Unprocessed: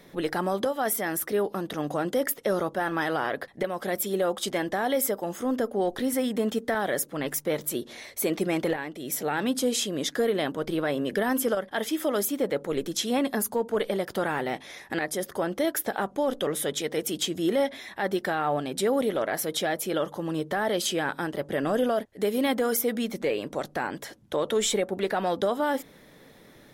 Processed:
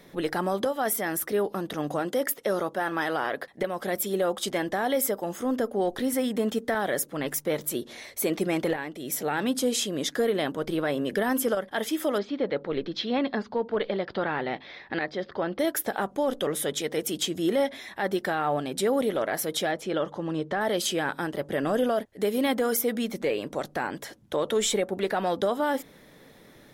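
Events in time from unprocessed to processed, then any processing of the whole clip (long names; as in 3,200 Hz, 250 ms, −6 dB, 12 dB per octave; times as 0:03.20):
0:01.99–0:03.61: low-shelf EQ 130 Hz −10.5 dB
0:12.18–0:15.59: elliptic low-pass filter 4,500 Hz, stop band 70 dB
0:19.71–0:20.61: high-frequency loss of the air 91 metres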